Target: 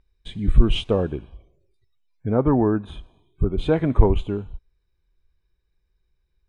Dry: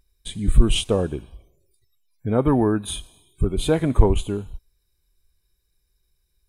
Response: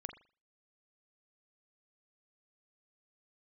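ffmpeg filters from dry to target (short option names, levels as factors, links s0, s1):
-af "asetnsamples=n=441:p=0,asendcmd='2.29 lowpass f 1600;3.58 lowpass f 2600',lowpass=3000"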